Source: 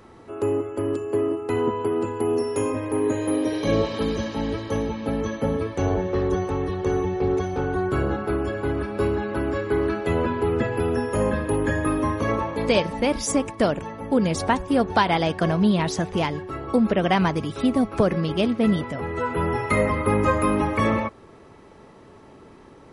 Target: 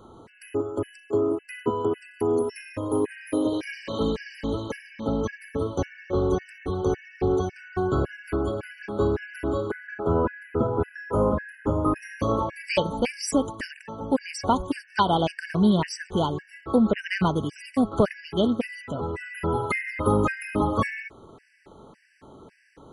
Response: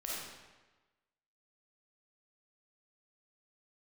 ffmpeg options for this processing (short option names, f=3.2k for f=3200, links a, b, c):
-filter_complex "[0:a]asettb=1/sr,asplit=3[a][b][c];[a]atrim=end=9.714[d];[b]atrim=start=9.71:end=11.96,asetpts=PTS-STARTPTS,afade=t=in:d=0.004:c=qsin,afade=t=out:st=2.246:d=0.004:c=qsin,highshelf=f=2.2k:t=q:w=1.5:g=-13.5[e];[c]atrim=start=11.956[f];[d][e]acrossfade=d=0.004:c1=hsin:c2=qsin[g];[g][f]acrossfade=d=0.004:c1=qsin:c2=hsin,afftfilt=real='re*gt(sin(2*PI*1.8*pts/sr)*(1-2*mod(floor(b*sr/1024/1500),2)),0)':imag='im*gt(sin(2*PI*1.8*pts/sr)*(1-2*mod(floor(b*sr/1024/1500),2)),0)':win_size=1024:overlap=0.75"